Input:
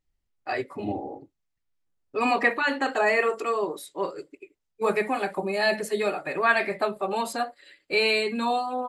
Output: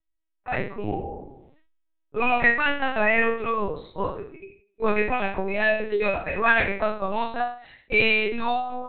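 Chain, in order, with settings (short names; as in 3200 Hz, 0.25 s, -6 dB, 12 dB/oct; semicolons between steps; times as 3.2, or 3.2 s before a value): spectral trails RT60 0.47 s; dynamic EQ 2700 Hz, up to +4 dB, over -37 dBFS, Q 1.9; AGC gain up to 5 dB; LPC vocoder at 8 kHz pitch kept; 1–2.35 sustainer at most 53 dB/s; gain -4 dB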